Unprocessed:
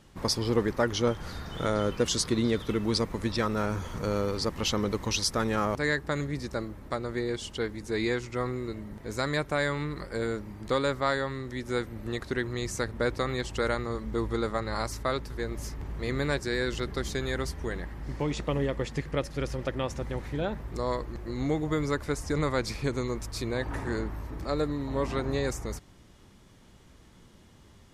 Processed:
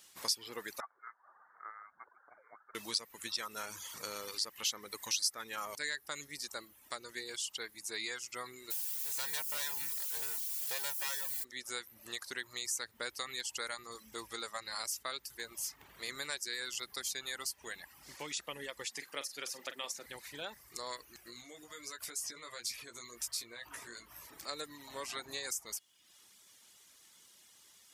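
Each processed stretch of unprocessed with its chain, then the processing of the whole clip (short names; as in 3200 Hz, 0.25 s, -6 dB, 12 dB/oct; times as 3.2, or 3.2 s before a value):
0.8–2.75 HPF 1300 Hz 24 dB/oct + air absorption 490 m + inverted band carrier 2600 Hz
8.7–11.43 minimum comb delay 2.1 ms + comb 1.2 ms, depth 32% + added noise white -44 dBFS
18.91–20.06 HPF 170 Hz 24 dB/oct + doubler 43 ms -8.5 dB
21.23–24.27 notch 830 Hz, Q 5.4 + compressor 12:1, threshold -33 dBFS + doubler 17 ms -5 dB
whole clip: reverb removal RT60 0.74 s; differentiator; compressor 2:1, threshold -47 dBFS; gain +9 dB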